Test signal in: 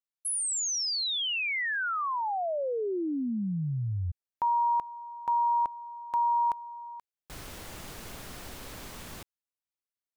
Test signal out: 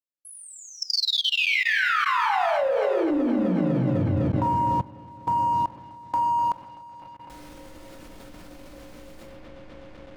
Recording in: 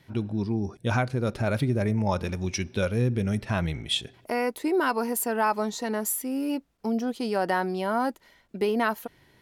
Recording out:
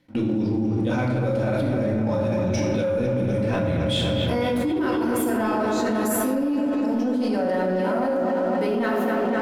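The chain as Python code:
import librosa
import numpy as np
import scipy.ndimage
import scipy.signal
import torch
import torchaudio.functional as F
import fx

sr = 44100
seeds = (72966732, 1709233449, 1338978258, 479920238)

p1 = np.clip(x, -10.0 ** (-24.0 / 20.0), 10.0 ** (-24.0 / 20.0))
p2 = x + F.gain(torch.from_numpy(p1), -11.0).numpy()
p3 = fx.high_shelf(p2, sr, hz=11000.0, db=-6.0)
p4 = fx.small_body(p3, sr, hz=(300.0, 540.0), ring_ms=60, db=11)
p5 = p4 + fx.echo_wet_lowpass(p4, sr, ms=252, feedback_pct=75, hz=3100.0, wet_db=-7.0, dry=0)
p6 = fx.room_shoebox(p5, sr, seeds[0], volume_m3=510.0, walls='mixed', distance_m=2.0)
p7 = fx.leveller(p6, sr, passes=1)
p8 = fx.level_steps(p7, sr, step_db=21)
y = F.gain(torch.from_numpy(p8), -1.5).numpy()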